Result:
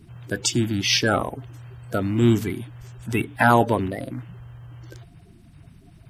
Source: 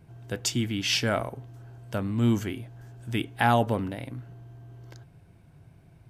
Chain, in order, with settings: bin magnitudes rounded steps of 30 dB; gain +6 dB

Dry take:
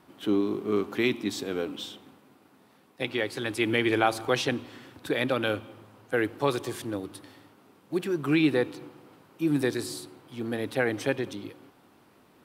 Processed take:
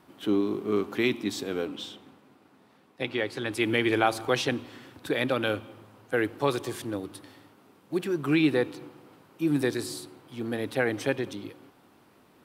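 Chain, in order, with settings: 1.66–3.51 high shelf 11000 Hz -> 7000 Hz -9.5 dB

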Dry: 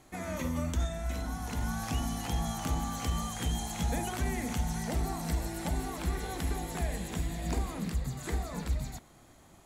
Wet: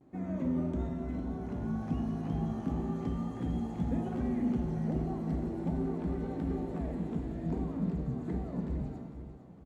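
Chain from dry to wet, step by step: feedback echo 0.461 s, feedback 40%, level -11.5 dB; vibrato 0.36 Hz 34 cents; band-pass 230 Hz, Q 1.3; shimmer reverb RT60 1.1 s, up +7 st, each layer -8 dB, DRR 5.5 dB; gain +4.5 dB

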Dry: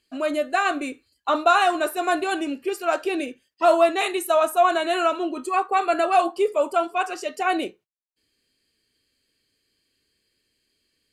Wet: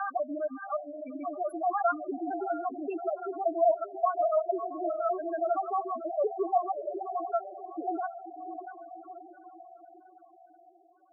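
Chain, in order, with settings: slices in reverse order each 96 ms, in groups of 7; diffused feedback echo 0.62 s, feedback 54%, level -6.5 dB; loudest bins only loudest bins 4; gain -7 dB

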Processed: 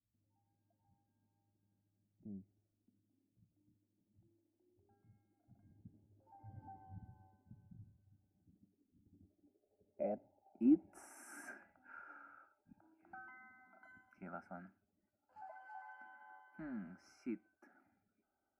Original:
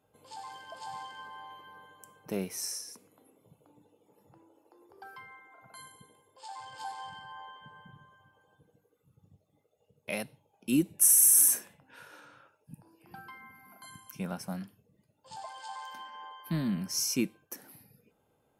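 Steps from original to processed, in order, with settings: Doppler pass-by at 6.55, 9 m/s, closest 3.3 m; tone controls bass -1 dB, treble +4 dB; notch 1800 Hz, Q 7.7; low-pass sweep 130 Hz -> 1400 Hz, 8.05–11.38; fixed phaser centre 710 Hz, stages 8; gain +17 dB

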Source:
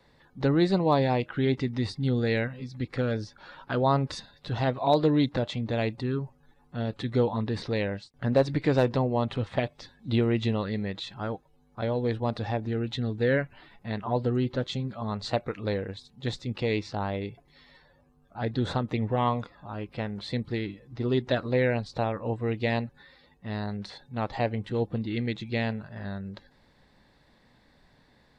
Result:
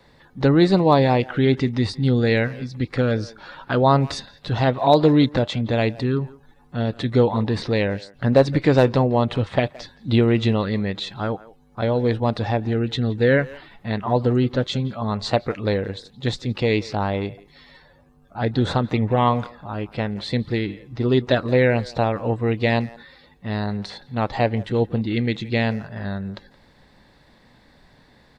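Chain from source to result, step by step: speakerphone echo 0.17 s, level -19 dB; gain +7.5 dB

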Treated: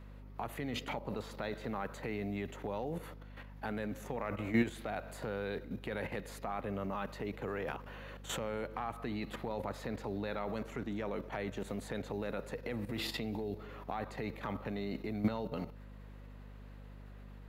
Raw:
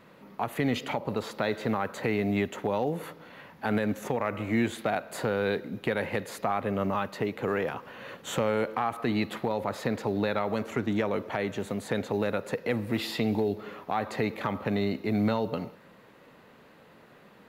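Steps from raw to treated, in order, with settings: level quantiser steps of 12 dB; hum 50 Hz, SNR 11 dB; gain -2 dB

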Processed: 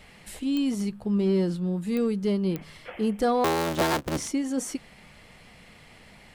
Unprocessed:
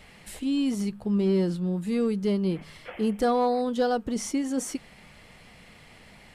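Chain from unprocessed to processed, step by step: 3.44–4.28 cycle switcher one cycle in 3, inverted; pops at 0.57/1.97/2.56, -18 dBFS

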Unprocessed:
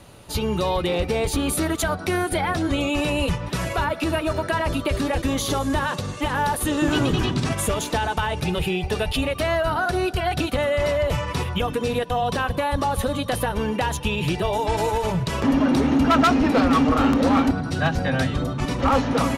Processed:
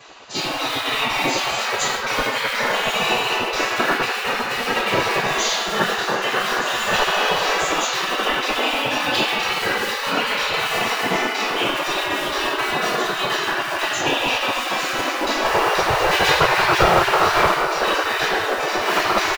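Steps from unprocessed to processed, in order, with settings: downsampling 16000 Hz; low shelf 180 Hz +8.5 dB; in parallel at -9 dB: Schmitt trigger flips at -20 dBFS; on the sum: reverb RT60 2.2 s, pre-delay 3 ms, DRR -15.5 dB; spectral gate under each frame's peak -20 dB weak; reverse; upward compressor, threshold -27 dBFS; reverse; gain -5.5 dB

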